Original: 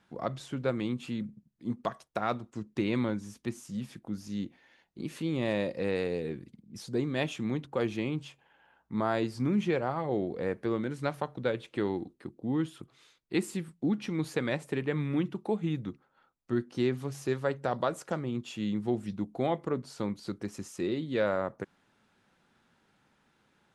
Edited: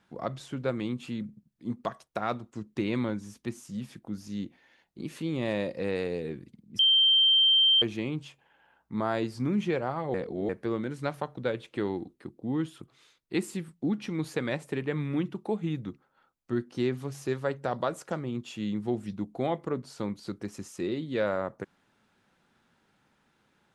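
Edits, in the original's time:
6.79–7.82 bleep 3140 Hz -18 dBFS
10.14–10.49 reverse

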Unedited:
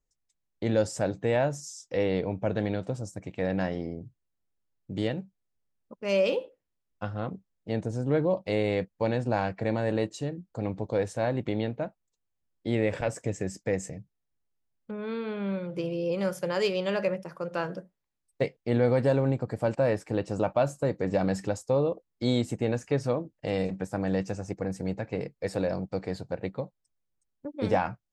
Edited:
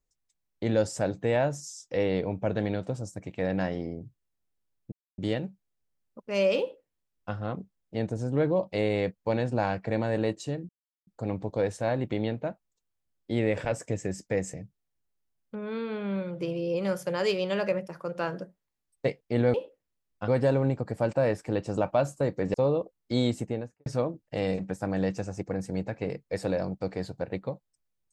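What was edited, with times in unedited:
4.92 insert silence 0.26 s
6.34–7.08 copy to 18.9
10.43 insert silence 0.38 s
21.16–21.65 cut
22.43–22.97 studio fade out

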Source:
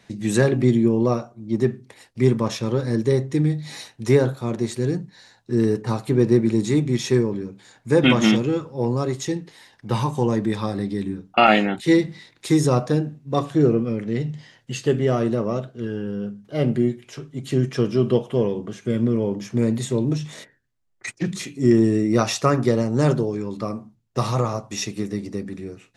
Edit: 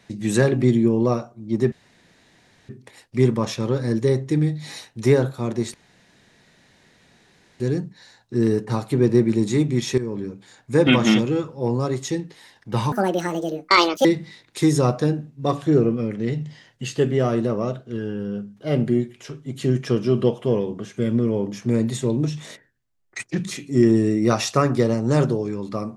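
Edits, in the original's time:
1.72 insert room tone 0.97 s
4.77 insert room tone 1.86 s
7.15–7.4 fade in, from -14.5 dB
10.09–11.93 speed 163%

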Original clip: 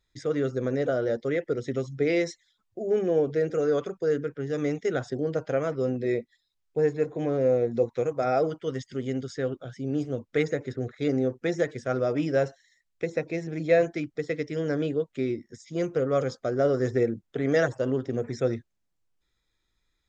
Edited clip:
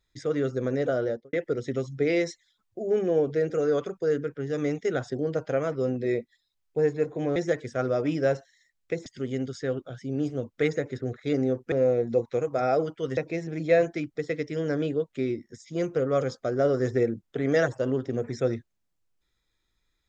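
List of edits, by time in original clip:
1.01–1.33 studio fade out
7.36–8.81 swap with 11.47–13.17

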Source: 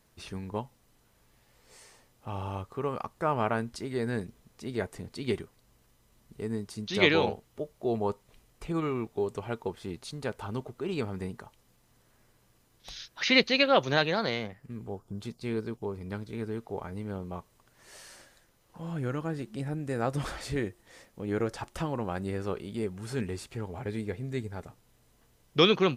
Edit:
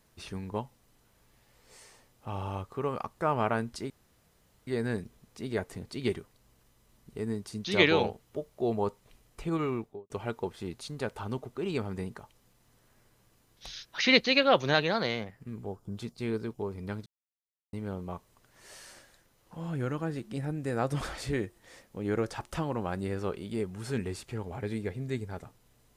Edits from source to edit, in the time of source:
3.9 insert room tone 0.77 s
8.93–9.33 studio fade out
16.29–16.96 mute

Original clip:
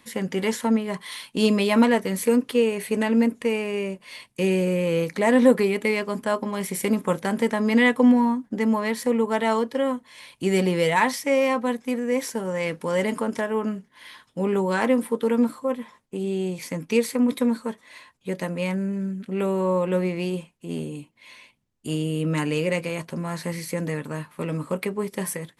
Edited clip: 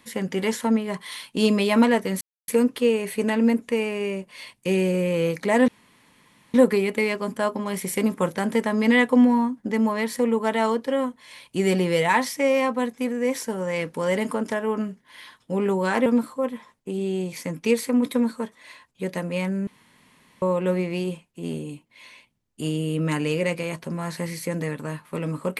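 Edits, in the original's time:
2.21 insert silence 0.27 s
5.41 insert room tone 0.86 s
14.93–15.32 cut
18.93–19.68 room tone

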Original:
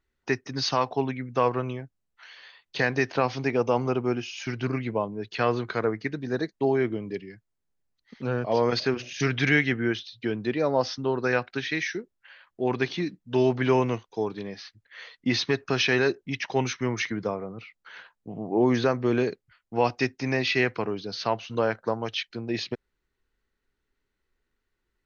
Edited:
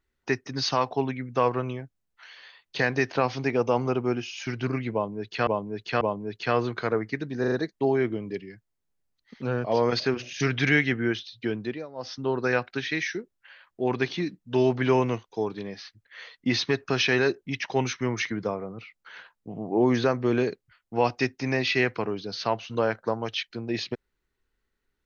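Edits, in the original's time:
4.93–5.47 loop, 3 plays
6.32 stutter 0.04 s, 4 plays
10.23–11.19 dip -19 dB, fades 0.44 s equal-power

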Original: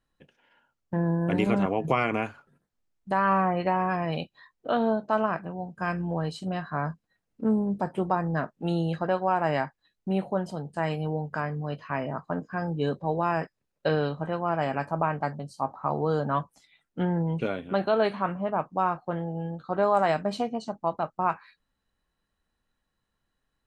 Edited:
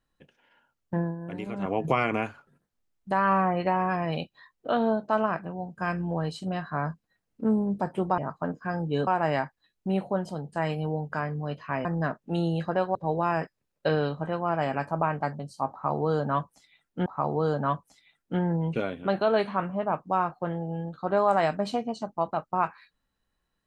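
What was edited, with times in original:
0.97–1.75 dip -11 dB, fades 0.18 s
8.18–9.28 swap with 12.06–12.95
15.72–17.06 loop, 2 plays

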